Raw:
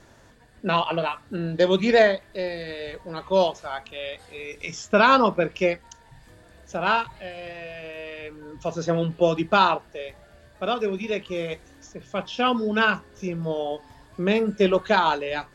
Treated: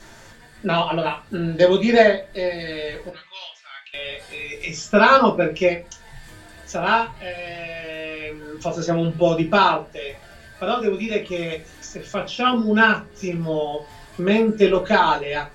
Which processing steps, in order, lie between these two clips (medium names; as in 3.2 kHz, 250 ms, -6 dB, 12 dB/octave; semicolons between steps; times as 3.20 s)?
3.09–3.94 s: ladder band-pass 2.7 kHz, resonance 35%; reverberation RT60 0.20 s, pre-delay 3 ms, DRR -2.5 dB; tape noise reduction on one side only encoder only; trim -1.5 dB